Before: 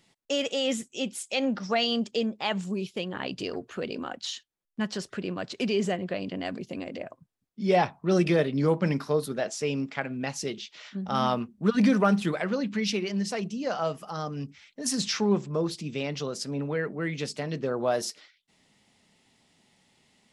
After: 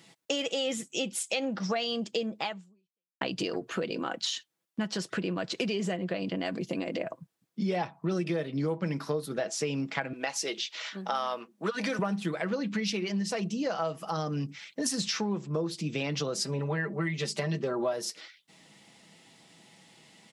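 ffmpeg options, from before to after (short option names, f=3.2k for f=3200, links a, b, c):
-filter_complex "[0:a]asettb=1/sr,asplit=3[a][b][c];[a]atrim=end=10.134[d];[b]atrim=start=10.13:end=11.99,asetpts=PTS-STARTPTS,afade=t=in:d=0.004:c=qsin,afade=t=out:st=1.856:d=0.004:c=qsin,highpass=480[e];[c]atrim=start=11.986[f];[d][e]acrossfade=d=0.004:c1=hsin:c2=qsin[g];[g][f]acrossfade=d=0.004:c1=qsin:c2=hsin,asettb=1/sr,asplit=3[h][i][j];[h]atrim=end=16.374[k];[i]atrim=start=16.37:end=17.93,asetpts=PTS-STARTPTS,afade=t=in:d=0.004:c=qsin,afade=t=out:st=1.556:d=0.004:c=qsin,aecho=1:1:5.1:0.88,atrim=end_sample=68796[l];[j]atrim=start=17.926[m];[k][l]acrossfade=d=0.004:c1=hsin:c2=qsin[n];[n][m]acrossfade=d=0.004:c1=qsin:c2=hsin,asplit=2[o][p];[o]atrim=end=3.21,asetpts=PTS-STARTPTS,afade=t=out:st=2.41:d=0.8:c=exp[q];[p]atrim=start=3.21,asetpts=PTS-STARTPTS,afade=t=in:d=0.004:c=hsin[r];[q][r]concat=n=2:v=0:a=1,highpass=120,aecho=1:1:6.1:0.39,acompressor=threshold=-36dB:ratio=6,volume=7.5dB"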